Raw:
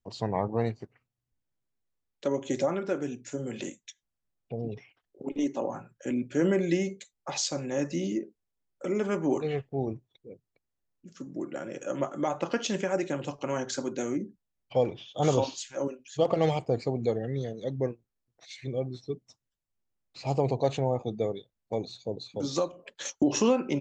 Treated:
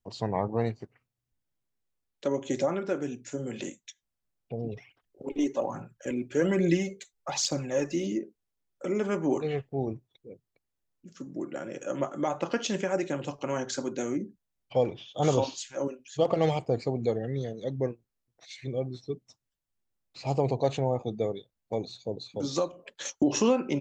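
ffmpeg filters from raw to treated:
-filter_complex "[0:a]asplit=3[a][b][c];[a]afade=t=out:st=4.72:d=0.02[d];[b]aphaser=in_gain=1:out_gain=1:delay=3:decay=0.5:speed=1.2:type=triangular,afade=t=in:st=4.72:d=0.02,afade=t=out:st=8.05:d=0.02[e];[c]afade=t=in:st=8.05:d=0.02[f];[d][e][f]amix=inputs=3:normalize=0"

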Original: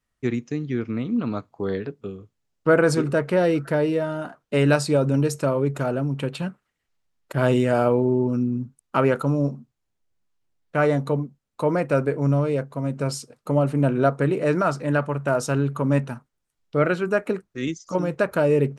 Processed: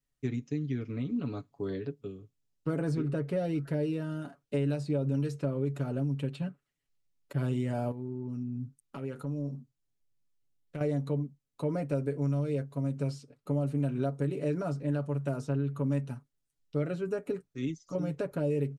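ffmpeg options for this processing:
-filter_complex "[0:a]asettb=1/sr,asplit=3[a][b][c];[a]atrim=end=7.914[d];[b]atrim=start=7.91:end=10.81,asetpts=PTS-STARTPTS,afade=t=in:d=0.004:c=qsin,afade=t=out:st=2.896:d=0.004:c=qsin,acompressor=threshold=-27dB:ratio=6:attack=3.2:release=140:knee=1:detection=peak[e];[c]atrim=start=10.806[f];[d][e]acrossfade=d=0.004:c1=hsin:c2=qsin[g];[g][f]acrossfade=d=0.004:c1=qsin:c2=hsin,equalizer=f=1.1k:w=0.56:g=-8.5,aecho=1:1:7.1:0.65,acrossover=split=880|3800[h][i][j];[h]acompressor=threshold=-21dB:ratio=4[k];[i]acompressor=threshold=-43dB:ratio=4[l];[j]acompressor=threshold=-55dB:ratio=4[m];[k][l][m]amix=inputs=3:normalize=0,volume=-6dB"

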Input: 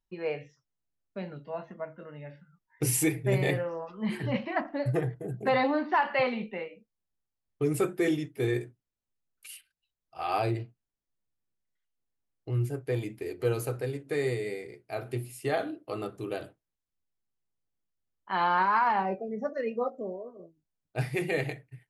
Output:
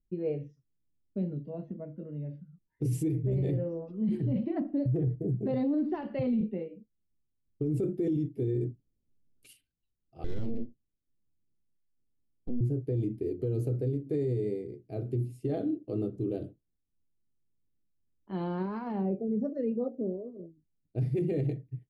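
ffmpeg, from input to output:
-filter_complex "[0:a]asettb=1/sr,asplit=3[a][b][c];[a]atrim=end=5.674[d];[b]atrim=start=5.67:end=6.41,asetpts=PTS-STARTPTS,afade=t=in:d=0.004:c=qsin,afade=t=out:st=0.736:d=0.004:c=qsin,asubboost=boost=10:cutoff=210[e];[c]atrim=start=6.406[f];[d][e]acrossfade=d=0.004:c1=hsin:c2=qsin[g];[g][f]acrossfade=d=0.004:c1=qsin:c2=hsin,asettb=1/sr,asplit=3[h][i][j];[h]atrim=end=10.244[k];[i]atrim=start=10.24:end=12.61,asetpts=PTS-STARTPTS,afade=t=in:d=0.004:c=qsin,afade=t=out:st=2.366:d=0.004:c=qsin,aeval=exprs='abs(val(0))':c=same[l];[j]atrim=start=12.606[m];[k][l]acrossfade=d=0.004:c1=hsin:c2=qsin[n];[n][m]acrossfade=d=0.004:c1=qsin:c2=hsin,asplit=3[o][p][q];[o]atrim=end=8.612[r];[p]atrim=start=8.608:end=9.532,asetpts=PTS-STARTPTS,volume=7dB[s];[q]atrim=start=9.528[t];[r][s]acrossfade=d=0.004:c1=hsin:c2=hsin[u];[u][t]acrossfade=d=0.004:c1=hsin:c2=hsin,firequalizer=gain_entry='entry(290,0);entry(910,-27);entry(1700,-29);entry(3300,-22)':delay=0.05:min_phase=1,alimiter=level_in=7dB:limit=-24dB:level=0:latency=1:release=22,volume=-7dB,highshelf=f=8.9k:g=-7,volume=8dB"

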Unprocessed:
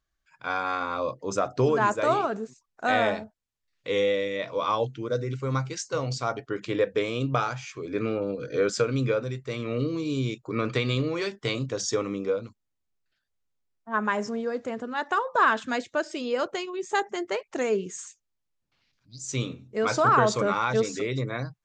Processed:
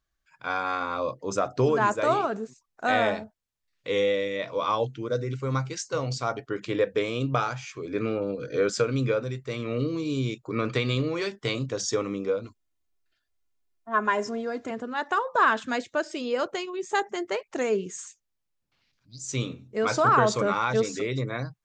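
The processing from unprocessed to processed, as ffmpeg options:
-filter_complex "[0:a]asettb=1/sr,asplit=3[a][b][c];[a]atrim=end=12.444[d];[b]atrim=start=12.44:end=14.71,asetpts=PTS-STARTPTS,afade=t=in:d=0.004:c=qsin,afade=t=out:st=2.266:d=0.004:c=qsin,aecho=1:1:2.9:0.65,atrim=end_sample=100107[e];[c]atrim=start=14.706[f];[d][e]acrossfade=d=0.004:c1=hsin:c2=qsin[g];[g][f]acrossfade=d=0.004:c1=qsin:c2=hsin"

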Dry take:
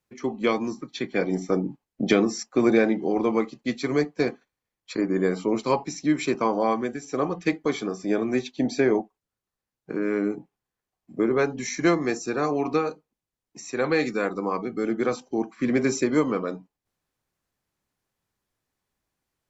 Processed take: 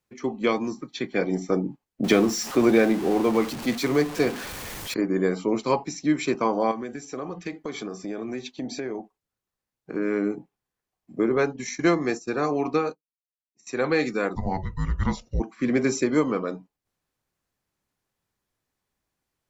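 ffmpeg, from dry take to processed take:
-filter_complex "[0:a]asettb=1/sr,asplit=3[a][b][c];[a]atrim=end=2.044[d];[b]atrim=start=2.04:end=4.94,asetpts=PTS-STARTPTS,afade=t=in:d=0.004:c=qsin,afade=t=out:st=2.896:d=0.004:c=qsin,aeval=exprs='val(0)+0.5*0.0355*sgn(val(0))':c=same[e];[c]atrim=start=4.936[f];[d][e]acrossfade=d=0.004:c1=hsin:c2=qsin[g];[g][f]acrossfade=d=0.004:c1=qsin:c2=hsin,asettb=1/sr,asplit=3[h][i][j];[h]atrim=end=6.714[k];[i]atrim=start=6.71:end=9.95,asetpts=PTS-STARTPTS,afade=t=in:d=0.004:c=qsin,afade=t=out:st=3.236:d=0.004:c=qsin,acompressor=threshold=-29dB:ratio=4:attack=3.2:release=140:knee=1:detection=peak[l];[j]atrim=start=9.946[m];[k][l]acrossfade=d=0.004:c1=hsin:c2=qsin[n];[n][m]acrossfade=d=0.004:c1=qsin:c2=hsin,asettb=1/sr,asplit=3[o][p][q];[o]atrim=end=11.364[r];[p]atrim=start=11.36:end=13.67,asetpts=PTS-STARTPTS,afade=t=in:d=0.004:c=qsin,afade=t=out:st=2.306:d=0.004:c=qsin,agate=range=-33dB:threshold=-30dB:ratio=3:release=100:detection=peak[s];[q]atrim=start=13.666[t];[r][s]acrossfade=d=0.004:c1=hsin:c2=qsin[u];[u][t]acrossfade=d=0.004:c1=qsin:c2=hsin,asplit=3[v][w][x];[v]afade=t=out:st=14.35:d=0.02[y];[w]afreqshift=-280,afade=t=in:st=14.35:d=0.02,afade=t=out:st=15.39:d=0.02[z];[x]afade=t=in:st=15.39:d=0.02[aa];[y][z][aa]amix=inputs=3:normalize=0"

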